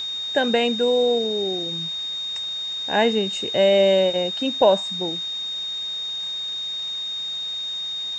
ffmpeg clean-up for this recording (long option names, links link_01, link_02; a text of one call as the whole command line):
ffmpeg -i in.wav -af "adeclick=threshold=4,bandreject=frequency=3700:width=30,afwtdn=0.0071" out.wav